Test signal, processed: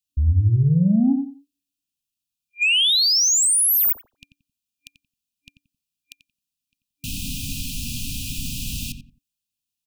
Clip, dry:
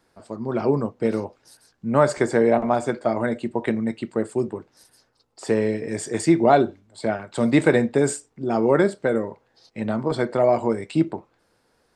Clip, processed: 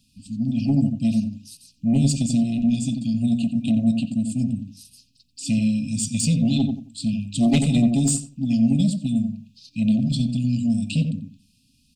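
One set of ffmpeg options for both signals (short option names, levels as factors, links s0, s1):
-filter_complex "[0:a]afftfilt=real='re*(1-between(b*sr/4096,280,2400))':imag='im*(1-between(b*sr/4096,280,2400))':win_size=4096:overlap=0.75,aeval=exprs='0.299*sin(PI/2*2.24*val(0)/0.299)':c=same,asplit=2[s0][s1];[s1]adelay=89,lowpass=f=1200:p=1,volume=0.562,asplit=2[s2][s3];[s3]adelay=89,lowpass=f=1200:p=1,volume=0.26,asplit=2[s4][s5];[s5]adelay=89,lowpass=f=1200:p=1,volume=0.26[s6];[s0][s2][s4][s6]amix=inputs=4:normalize=0,volume=0.668"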